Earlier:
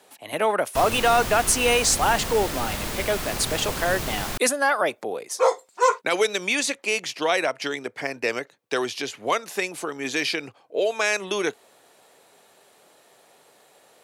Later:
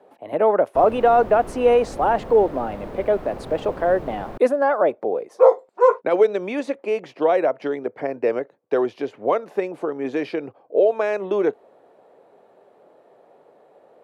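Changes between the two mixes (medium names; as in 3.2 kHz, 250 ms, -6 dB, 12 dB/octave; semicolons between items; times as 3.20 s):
background -5.5 dB; master: add FFT filter 110 Hz 0 dB, 540 Hz +8 dB, 7 kHz -25 dB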